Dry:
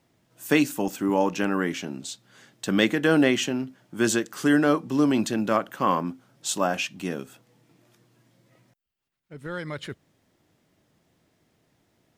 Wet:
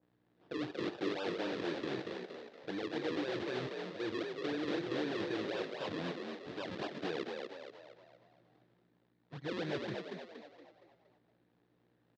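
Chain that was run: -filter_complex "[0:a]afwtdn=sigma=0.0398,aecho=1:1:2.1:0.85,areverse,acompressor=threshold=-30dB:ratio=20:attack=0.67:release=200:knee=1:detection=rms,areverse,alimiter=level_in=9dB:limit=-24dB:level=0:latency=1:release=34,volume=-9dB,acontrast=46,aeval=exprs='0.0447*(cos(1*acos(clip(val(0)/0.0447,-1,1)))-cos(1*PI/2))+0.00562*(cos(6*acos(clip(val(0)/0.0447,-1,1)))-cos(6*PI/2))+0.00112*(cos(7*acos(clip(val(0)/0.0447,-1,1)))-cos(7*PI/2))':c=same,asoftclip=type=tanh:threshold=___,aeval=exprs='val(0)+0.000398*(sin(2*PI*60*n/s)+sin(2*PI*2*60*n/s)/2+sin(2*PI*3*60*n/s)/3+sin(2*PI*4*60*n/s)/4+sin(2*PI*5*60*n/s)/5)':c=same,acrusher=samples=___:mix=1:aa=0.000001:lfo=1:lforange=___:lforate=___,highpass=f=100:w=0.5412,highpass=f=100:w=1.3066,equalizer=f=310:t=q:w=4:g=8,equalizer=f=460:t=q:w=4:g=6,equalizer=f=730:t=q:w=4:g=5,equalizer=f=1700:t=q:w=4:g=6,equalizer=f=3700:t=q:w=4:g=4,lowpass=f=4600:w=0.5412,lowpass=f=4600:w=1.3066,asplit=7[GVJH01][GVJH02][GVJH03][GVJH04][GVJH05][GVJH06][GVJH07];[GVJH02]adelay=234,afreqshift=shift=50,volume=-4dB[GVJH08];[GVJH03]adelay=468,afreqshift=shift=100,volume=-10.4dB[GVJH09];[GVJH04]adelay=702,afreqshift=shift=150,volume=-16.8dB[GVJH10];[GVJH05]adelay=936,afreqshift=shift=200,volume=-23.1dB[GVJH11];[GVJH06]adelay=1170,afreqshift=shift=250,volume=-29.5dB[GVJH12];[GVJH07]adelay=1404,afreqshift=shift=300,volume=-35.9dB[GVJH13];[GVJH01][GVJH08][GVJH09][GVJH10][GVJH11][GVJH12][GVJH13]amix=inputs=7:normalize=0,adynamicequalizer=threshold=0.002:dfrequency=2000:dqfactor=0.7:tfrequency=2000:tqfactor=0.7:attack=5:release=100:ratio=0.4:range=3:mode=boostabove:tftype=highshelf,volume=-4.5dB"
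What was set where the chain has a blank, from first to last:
-34dB, 41, 41, 3.9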